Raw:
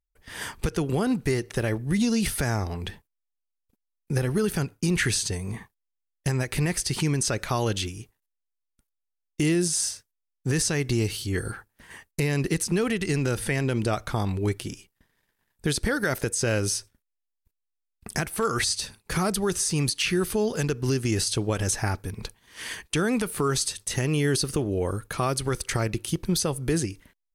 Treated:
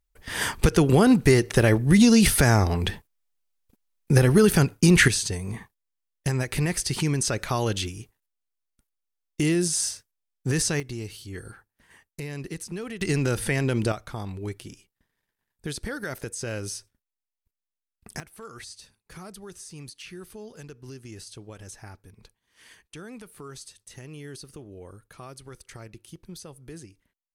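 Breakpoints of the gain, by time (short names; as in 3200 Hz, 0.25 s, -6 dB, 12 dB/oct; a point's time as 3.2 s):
+7.5 dB
from 5.08 s 0 dB
from 10.8 s -10 dB
from 13.01 s +1 dB
from 13.92 s -7.5 dB
from 18.2 s -17 dB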